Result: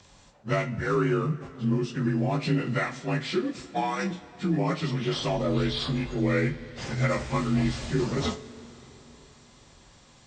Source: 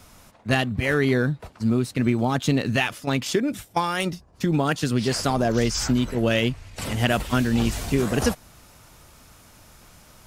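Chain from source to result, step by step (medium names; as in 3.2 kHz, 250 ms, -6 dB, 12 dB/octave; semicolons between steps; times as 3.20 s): frequency axis rescaled in octaves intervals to 86%; two-slope reverb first 0.26 s, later 4.3 s, from -22 dB, DRR 4.5 dB; trim -4 dB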